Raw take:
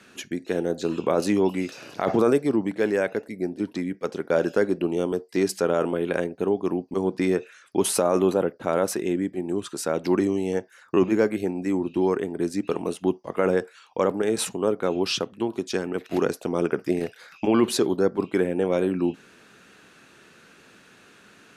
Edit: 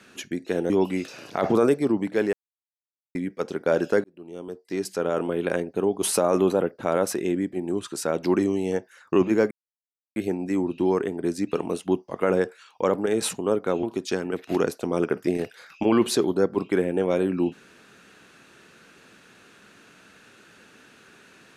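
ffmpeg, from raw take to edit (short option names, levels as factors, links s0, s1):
-filter_complex "[0:a]asplit=8[s0][s1][s2][s3][s4][s5][s6][s7];[s0]atrim=end=0.702[s8];[s1]atrim=start=1.338:end=2.97,asetpts=PTS-STARTPTS,afade=t=out:st=1.628:d=0.004:c=hsin[s9];[s2]atrim=start=2.97:end=3.79,asetpts=PTS-STARTPTS,volume=0[s10];[s3]atrim=start=3.79:end=4.68,asetpts=PTS-STARTPTS,afade=t=in:d=0.004:c=hsin,afade=t=out:st=0.886:d=0.004:c=hsin[s11];[s4]atrim=start=4.68:end=6.662,asetpts=PTS-STARTPTS,afade=t=in:d=1.42[s12];[s5]atrim=start=7.828:end=11.32,asetpts=PTS-STARTPTS,afade=t=out:st=3.488:d=0.004:c=hsin,apad=pad_dur=0.65[s13];[s6]atrim=start=11.32:end=14.992,asetpts=PTS-STARTPTS,afade=t=in:d=0.004:c=hsin[s14];[s7]atrim=start=15.448[s15];[s9][s10][s11][s12]concat=n=4:v=0:a=1[s16];[s8][s16]acrossfade=d=0.004:c1=hsin:c2=hsin[s17];[s13][s14]concat=n=2:v=0:a=1[s18];[s17][s18]acrossfade=d=0.004:c1=hsin:c2=hsin[s19];[s19][s15]acrossfade=d=0.004:c1=hsin:c2=hsin"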